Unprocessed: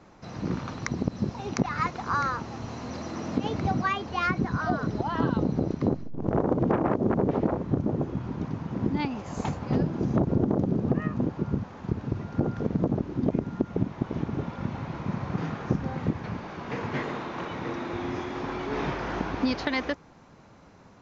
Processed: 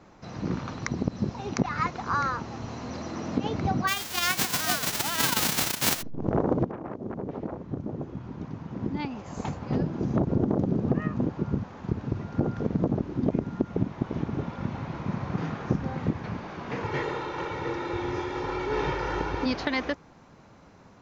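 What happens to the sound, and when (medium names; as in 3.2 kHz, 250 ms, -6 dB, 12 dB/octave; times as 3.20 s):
3.87–6.01 s: formants flattened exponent 0.1
6.65–10.73 s: fade in, from -13.5 dB
16.84–19.46 s: comb 2.2 ms, depth 75%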